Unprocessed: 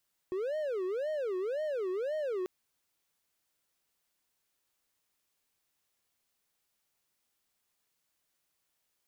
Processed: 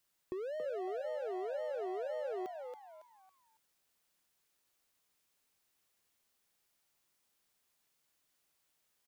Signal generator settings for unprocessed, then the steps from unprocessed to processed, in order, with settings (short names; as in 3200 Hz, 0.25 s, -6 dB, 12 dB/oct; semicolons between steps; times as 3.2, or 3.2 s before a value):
siren wail 365–622 Hz 1.9/s triangle -29 dBFS 2.14 s
compressor, threshold -38 dBFS; frequency-shifting echo 0.277 s, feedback 33%, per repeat +130 Hz, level -5.5 dB